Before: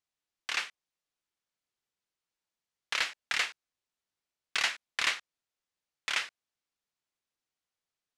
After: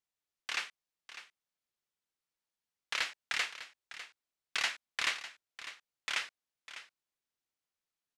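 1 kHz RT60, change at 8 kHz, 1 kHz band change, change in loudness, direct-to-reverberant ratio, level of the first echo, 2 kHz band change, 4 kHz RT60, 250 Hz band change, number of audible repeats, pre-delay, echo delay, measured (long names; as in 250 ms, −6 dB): no reverb audible, −3.5 dB, −3.5 dB, −5.0 dB, no reverb audible, −13.5 dB, −3.5 dB, no reverb audible, −3.5 dB, 1, no reverb audible, 601 ms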